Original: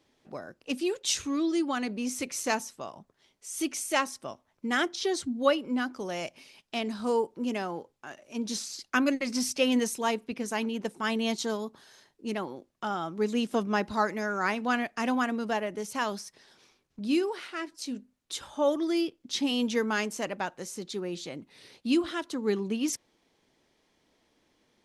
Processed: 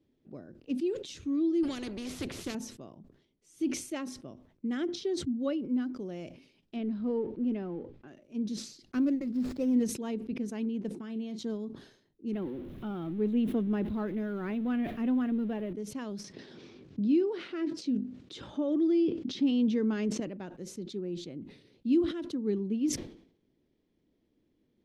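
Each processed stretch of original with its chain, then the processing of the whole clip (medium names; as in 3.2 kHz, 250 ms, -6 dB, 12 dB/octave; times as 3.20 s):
1.63–2.55 s: peaking EQ 430 Hz +7 dB 2.2 oct + spectrum-flattening compressor 4:1
6.76–8.08 s: companding laws mixed up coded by mu + low-pass 3.1 kHz
8.92–9.83 s: median filter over 15 samples + treble shelf 5.3 kHz +4 dB + companded quantiser 8-bit
10.95–11.39 s: high-pass 130 Hz 24 dB/octave + doubling 37 ms -14 dB + compression 5:1, threshold -30 dBFS
12.33–15.73 s: jump at every zero crossing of -34.5 dBFS + high-order bell 6.3 kHz -12 dB 1.2 oct
16.24–20.20 s: band-pass 110–6000 Hz + level flattener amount 50%
whole clip: FFT filter 330 Hz 0 dB, 870 Hz -18 dB, 3.5 kHz -15 dB, 8.7 kHz -24 dB; decay stretcher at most 95 dB/s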